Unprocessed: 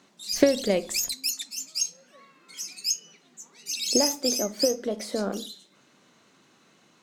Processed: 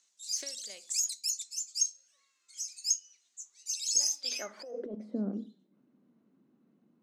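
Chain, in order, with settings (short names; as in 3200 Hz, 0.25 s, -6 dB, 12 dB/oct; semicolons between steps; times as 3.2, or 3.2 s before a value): band-pass sweep 7000 Hz -> 230 Hz, 4.09–4.99; 1.18–1.45 spectral delete 270–1900 Hz; 4.31–4.95 negative-ratio compressor -39 dBFS, ratio -1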